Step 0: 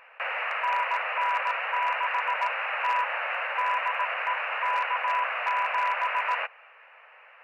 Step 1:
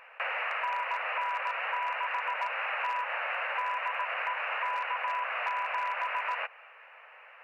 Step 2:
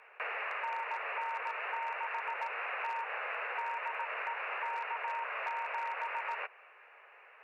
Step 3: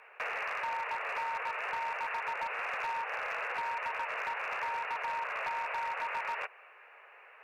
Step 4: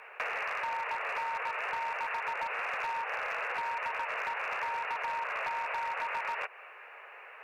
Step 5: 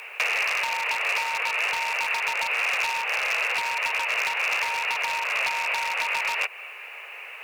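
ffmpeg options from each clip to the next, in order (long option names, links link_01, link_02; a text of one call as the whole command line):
ffmpeg -i in.wav -af "acompressor=threshold=-29dB:ratio=6" out.wav
ffmpeg -i in.wav -af "afreqshift=-64,volume=-5dB" out.wav
ffmpeg -i in.wav -af "asoftclip=type=hard:threshold=-31.5dB,volume=2dB" out.wav
ffmpeg -i in.wav -af "acompressor=threshold=-40dB:ratio=2.5,volume=6dB" out.wav
ffmpeg -i in.wav -af "aexciter=amount=5.6:drive=4.8:freq=2300,volume=4dB" out.wav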